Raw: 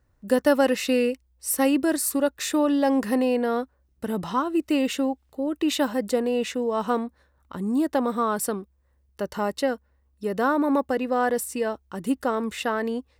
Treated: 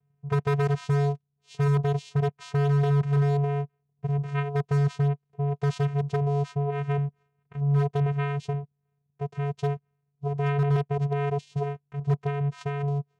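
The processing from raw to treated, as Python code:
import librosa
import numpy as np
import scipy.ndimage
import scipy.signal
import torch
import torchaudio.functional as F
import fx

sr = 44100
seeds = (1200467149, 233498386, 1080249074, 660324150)

y = fx.env_lowpass(x, sr, base_hz=2200.0, full_db=-22.0)
y = fx.vocoder(y, sr, bands=4, carrier='square', carrier_hz=142.0)
y = 10.0 ** (-17.0 / 20.0) * (np.abs((y / 10.0 ** (-17.0 / 20.0) + 3.0) % 4.0 - 2.0) - 1.0)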